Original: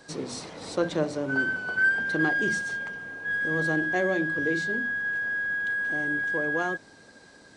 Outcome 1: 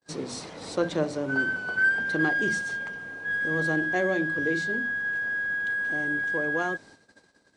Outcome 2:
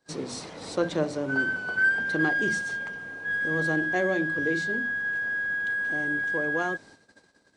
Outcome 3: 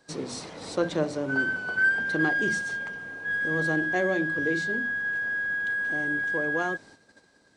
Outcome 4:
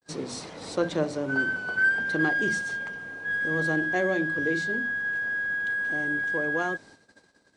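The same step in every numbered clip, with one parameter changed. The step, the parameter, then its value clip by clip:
gate, range: -40, -23, -10, -54 dB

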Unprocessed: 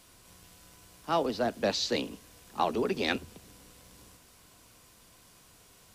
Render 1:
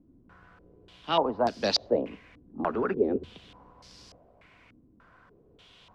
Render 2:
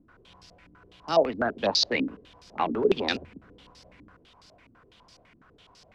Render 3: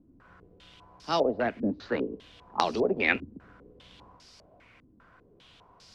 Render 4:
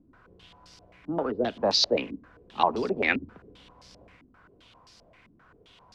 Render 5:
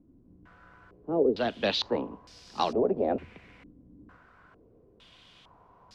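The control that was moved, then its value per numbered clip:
stepped low-pass, rate: 3.4, 12, 5, 7.6, 2.2 Hz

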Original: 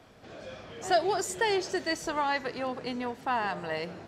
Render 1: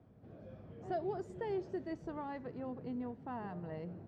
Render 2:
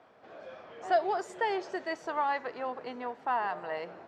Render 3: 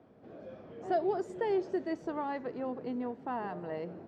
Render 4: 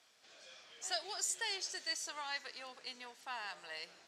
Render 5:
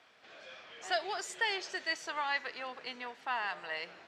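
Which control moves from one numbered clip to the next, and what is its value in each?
band-pass, frequency: 120, 880, 290, 6700, 2500 Hz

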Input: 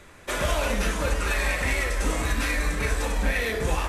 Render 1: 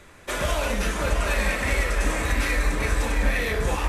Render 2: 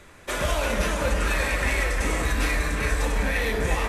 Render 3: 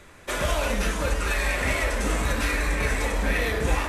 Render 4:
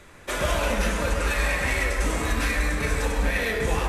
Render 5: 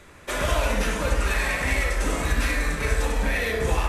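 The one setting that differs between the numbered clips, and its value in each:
dark delay, time: 672, 353, 1263, 133, 69 ms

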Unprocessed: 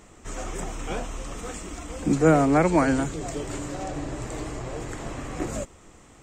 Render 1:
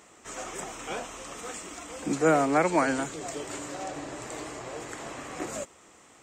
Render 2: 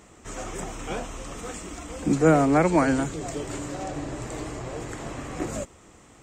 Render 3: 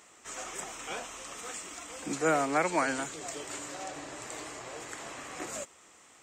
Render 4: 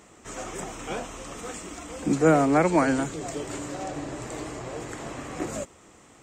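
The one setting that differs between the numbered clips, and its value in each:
HPF, cutoff: 530, 56, 1300, 170 Hz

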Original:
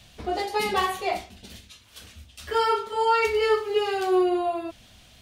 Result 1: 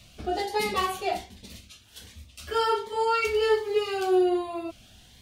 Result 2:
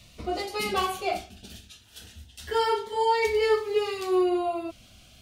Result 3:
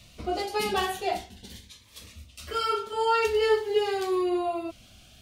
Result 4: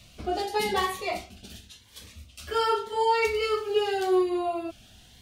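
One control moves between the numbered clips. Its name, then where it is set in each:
cascading phaser, rate: 1.3, 0.24, 0.45, 0.9 Hz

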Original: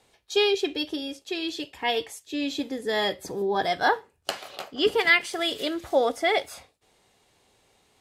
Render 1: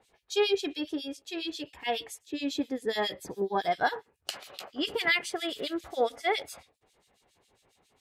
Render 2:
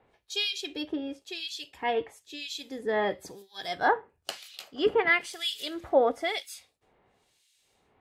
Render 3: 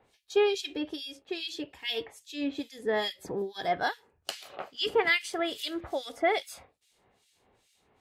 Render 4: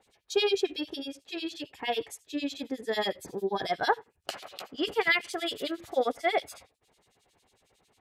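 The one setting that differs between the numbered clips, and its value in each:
harmonic tremolo, rate: 7.3, 1, 2.4, 11 Hz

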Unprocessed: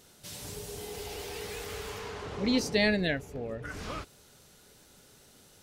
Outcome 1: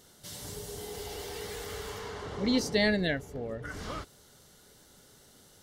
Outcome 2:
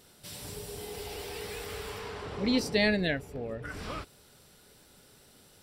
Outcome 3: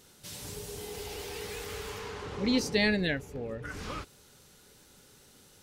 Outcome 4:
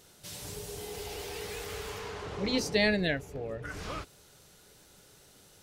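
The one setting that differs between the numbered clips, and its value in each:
notch, frequency: 2500, 6500, 660, 240 Hz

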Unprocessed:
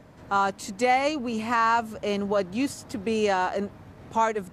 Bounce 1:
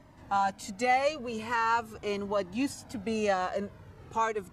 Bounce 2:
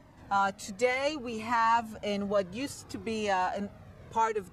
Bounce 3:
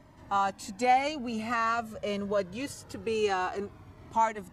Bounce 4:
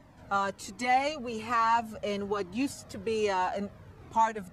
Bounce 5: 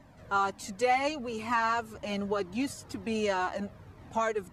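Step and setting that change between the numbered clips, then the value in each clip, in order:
cascading flanger, rate: 0.43, 0.63, 0.24, 1.2, 2 Hz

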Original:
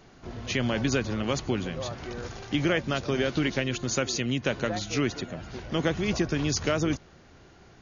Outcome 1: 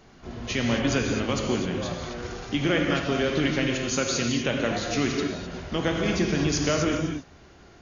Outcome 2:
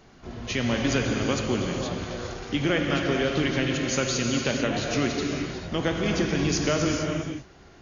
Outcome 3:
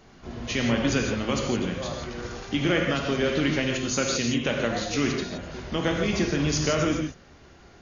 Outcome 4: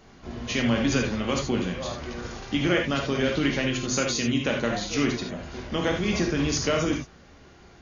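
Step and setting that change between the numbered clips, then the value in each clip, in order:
non-linear reverb, gate: 0.28, 0.49, 0.19, 0.11 s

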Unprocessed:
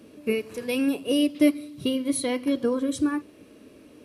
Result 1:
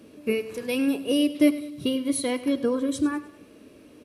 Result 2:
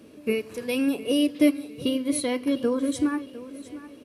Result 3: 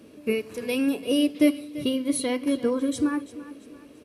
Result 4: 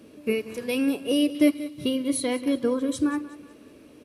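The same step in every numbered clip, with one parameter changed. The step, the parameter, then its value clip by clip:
feedback echo, time: 0.102, 0.706, 0.34, 0.185 s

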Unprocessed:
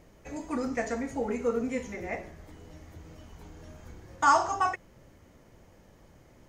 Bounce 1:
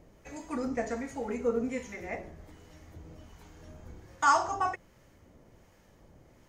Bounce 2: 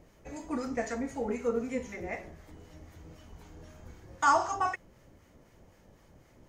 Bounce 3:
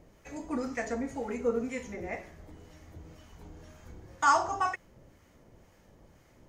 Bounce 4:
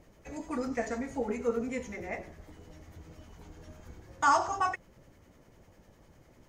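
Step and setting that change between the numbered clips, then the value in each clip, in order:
harmonic tremolo, rate: 1.3, 3.9, 2, 10 Hz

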